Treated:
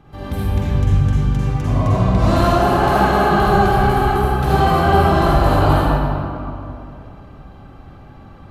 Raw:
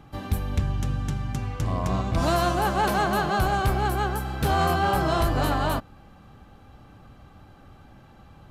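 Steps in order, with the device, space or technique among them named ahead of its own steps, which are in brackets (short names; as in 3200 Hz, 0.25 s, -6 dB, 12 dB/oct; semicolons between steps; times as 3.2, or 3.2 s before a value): swimming-pool hall (reverb RT60 2.7 s, pre-delay 42 ms, DRR -8 dB; high shelf 3800 Hz -6.5 dB)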